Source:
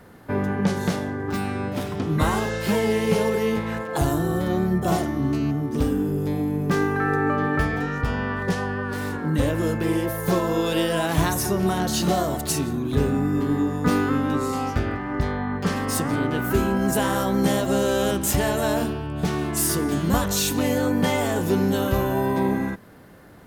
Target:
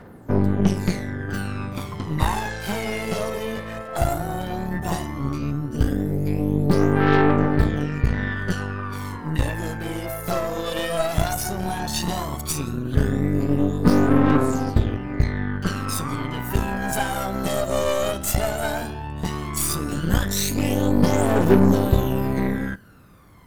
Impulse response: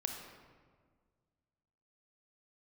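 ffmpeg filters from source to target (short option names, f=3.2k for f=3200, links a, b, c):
-filter_complex "[0:a]aphaser=in_gain=1:out_gain=1:delay=1.7:decay=0.67:speed=0.14:type=triangular,asplit=2[a][b];[1:a]atrim=start_sample=2205,atrim=end_sample=3087[c];[b][c]afir=irnorm=-1:irlink=0,volume=-12.5dB[d];[a][d]amix=inputs=2:normalize=0,aeval=exprs='1.26*(cos(1*acos(clip(val(0)/1.26,-1,1)))-cos(1*PI/2))+0.126*(cos(3*acos(clip(val(0)/1.26,-1,1)))-cos(3*PI/2))+0.1*(cos(8*acos(clip(val(0)/1.26,-1,1)))-cos(8*PI/2))':c=same,volume=-3dB"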